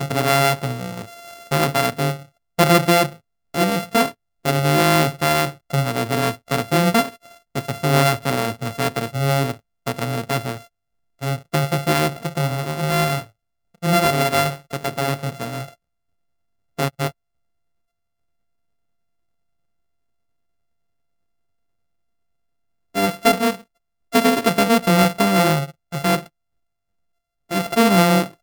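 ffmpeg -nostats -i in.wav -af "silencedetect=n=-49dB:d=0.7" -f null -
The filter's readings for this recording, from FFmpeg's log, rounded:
silence_start: 15.74
silence_end: 16.78 | silence_duration: 1.03
silence_start: 17.12
silence_end: 22.94 | silence_duration: 5.83
silence_start: 26.28
silence_end: 27.49 | silence_duration: 1.21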